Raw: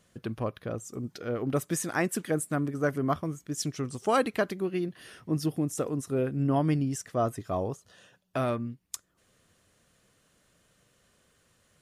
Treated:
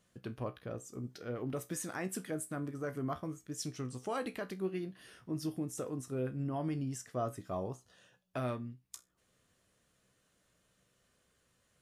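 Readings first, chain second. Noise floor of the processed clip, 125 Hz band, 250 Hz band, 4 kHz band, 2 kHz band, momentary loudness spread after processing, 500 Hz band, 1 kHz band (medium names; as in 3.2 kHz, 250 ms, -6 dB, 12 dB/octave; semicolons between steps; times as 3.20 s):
-75 dBFS, -8.5 dB, -9.0 dB, -8.5 dB, -11.0 dB, 8 LU, -9.5 dB, -10.0 dB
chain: peak limiter -19.5 dBFS, peak gain reduction 7 dB; feedback comb 63 Hz, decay 0.22 s, harmonics all, mix 70%; trim -3 dB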